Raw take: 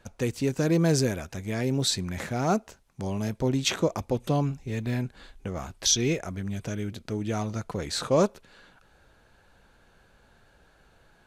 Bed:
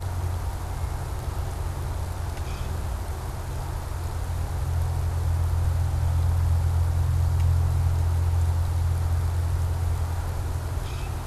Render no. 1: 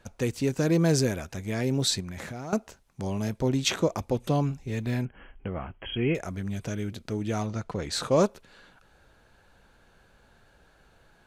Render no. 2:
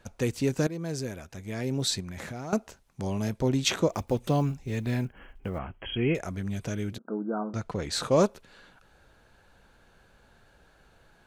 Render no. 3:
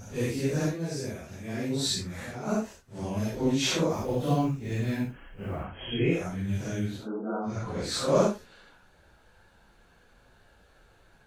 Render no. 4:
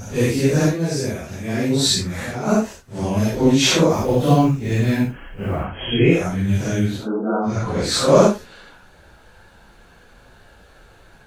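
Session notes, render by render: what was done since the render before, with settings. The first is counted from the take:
2.00–2.53 s: compression 10:1, threshold -33 dBFS; 5.05–6.15 s: brick-wall FIR low-pass 3.3 kHz; 7.46–7.92 s: distance through air 54 m
0.67–2.38 s: fade in, from -15 dB; 3.89–5.60 s: block-companded coder 7-bit; 6.98–7.54 s: brick-wall FIR band-pass 180–1600 Hz
phase randomisation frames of 200 ms
trim +11 dB; peak limiter -1 dBFS, peak gain reduction 1 dB

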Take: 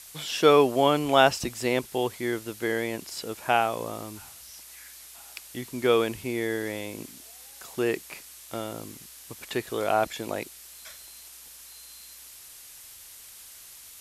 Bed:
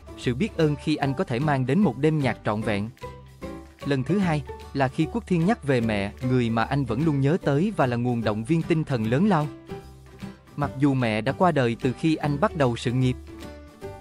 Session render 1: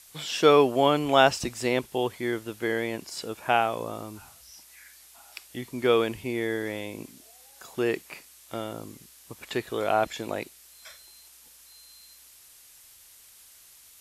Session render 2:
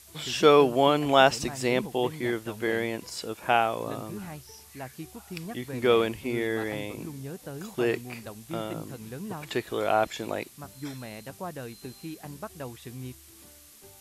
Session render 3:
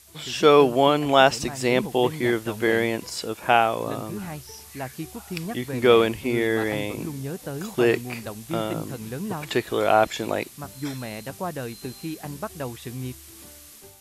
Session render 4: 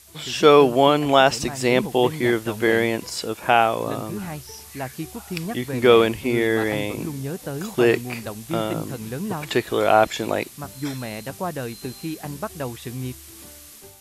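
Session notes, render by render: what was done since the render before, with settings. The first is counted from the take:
noise print and reduce 6 dB
add bed -17 dB
level rider gain up to 6.5 dB
trim +2.5 dB; peak limiter -2 dBFS, peak gain reduction 3 dB

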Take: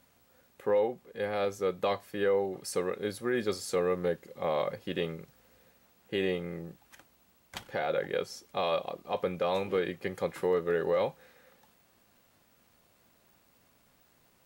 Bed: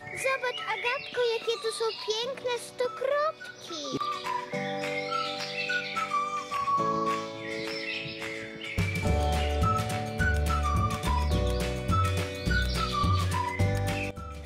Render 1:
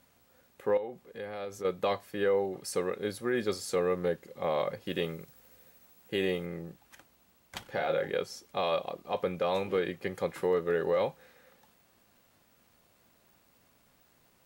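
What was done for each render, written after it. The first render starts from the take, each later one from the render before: 0.77–1.65 s: compression 2.5:1, threshold -38 dBFS; 4.86–6.46 s: treble shelf 7 kHz +8.5 dB; 7.71–8.12 s: doubling 31 ms -7 dB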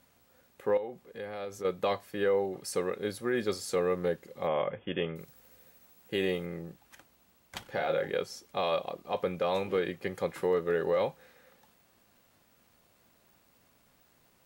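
4.47–5.16 s: brick-wall FIR low-pass 3.6 kHz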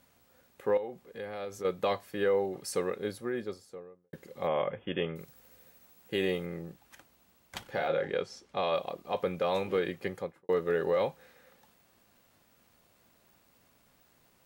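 2.79–4.13 s: studio fade out; 7.88–8.75 s: distance through air 69 m; 10.04–10.49 s: studio fade out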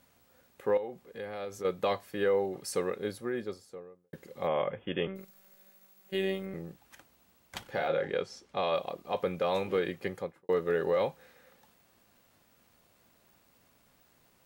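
5.07–6.54 s: robot voice 192 Hz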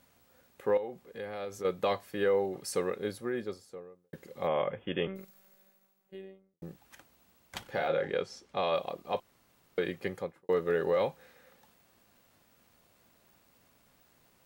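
5.19–6.62 s: studio fade out; 9.20–9.78 s: room tone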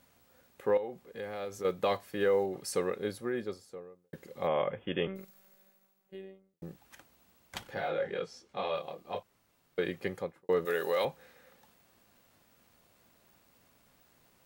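1.18–2.47 s: block-companded coder 7-bit; 7.74–9.79 s: detune thickener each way 11 cents; 10.65–11.05 s: RIAA curve recording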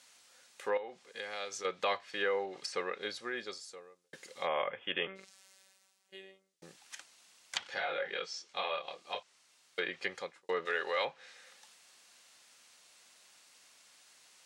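frequency weighting ITU-R 468; low-pass that closes with the level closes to 2.4 kHz, closed at -30.5 dBFS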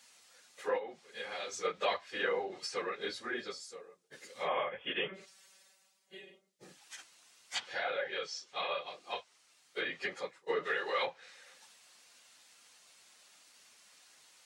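phase randomisation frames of 50 ms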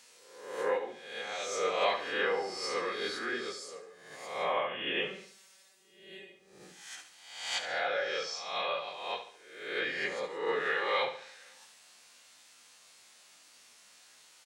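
reverse spectral sustain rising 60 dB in 0.82 s; feedback delay 71 ms, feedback 42%, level -10.5 dB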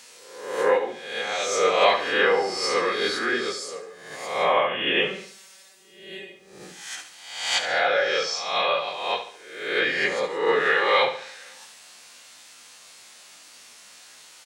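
trim +10.5 dB

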